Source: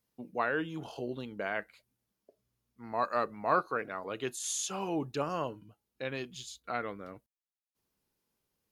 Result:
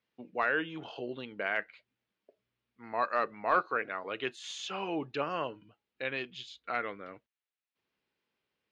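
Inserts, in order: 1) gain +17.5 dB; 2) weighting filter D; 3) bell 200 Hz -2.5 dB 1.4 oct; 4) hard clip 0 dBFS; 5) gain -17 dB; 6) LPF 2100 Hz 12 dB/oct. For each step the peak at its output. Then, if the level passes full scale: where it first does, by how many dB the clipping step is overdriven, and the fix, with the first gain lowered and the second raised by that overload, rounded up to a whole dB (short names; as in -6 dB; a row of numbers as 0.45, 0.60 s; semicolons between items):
+4.0, +5.5, +5.0, 0.0, -17.0, -16.5 dBFS; step 1, 5.0 dB; step 1 +12.5 dB, step 5 -12 dB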